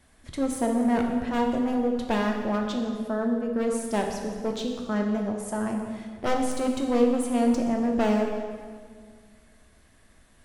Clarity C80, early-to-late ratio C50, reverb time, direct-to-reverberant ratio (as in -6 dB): 5.5 dB, 4.0 dB, 1.8 s, 1.5 dB